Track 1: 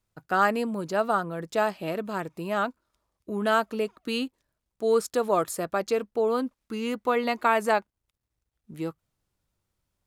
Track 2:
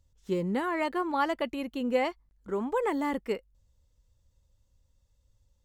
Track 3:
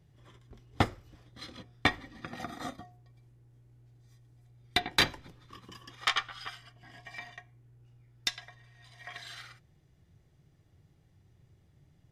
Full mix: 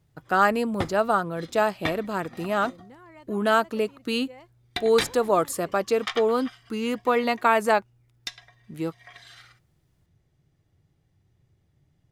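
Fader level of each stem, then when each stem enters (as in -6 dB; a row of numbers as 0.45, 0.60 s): +2.5, -19.5, -3.0 dB; 0.00, 2.35, 0.00 s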